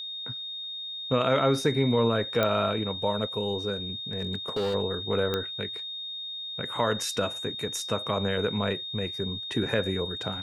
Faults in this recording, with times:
tone 3700 Hz -34 dBFS
2.43 pop -12 dBFS
4.13–4.75 clipped -24 dBFS
5.34 pop -14 dBFS

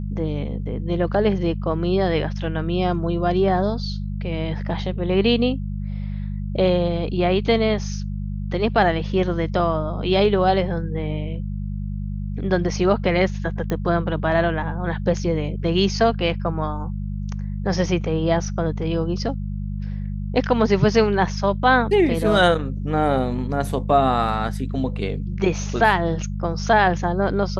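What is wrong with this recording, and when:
hum 50 Hz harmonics 4 -27 dBFS
13.7 pop -13 dBFS

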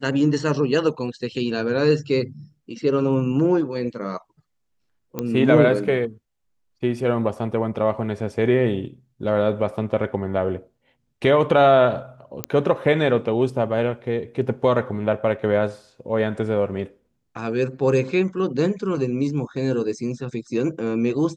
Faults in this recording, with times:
5.19 pop -12 dBFS
12.44 pop -7 dBFS

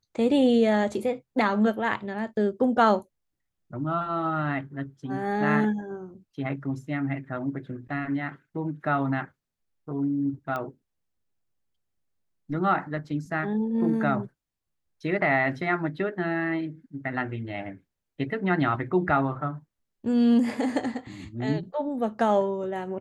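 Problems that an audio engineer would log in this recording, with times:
10.56 pop -19 dBFS

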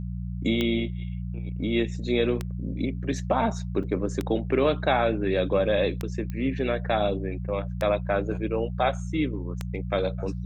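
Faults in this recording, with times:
hum 60 Hz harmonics 3 -32 dBFS
tick 33 1/3 rpm -14 dBFS
3.83–3.84 gap 6.2 ms
6.3 pop -22 dBFS

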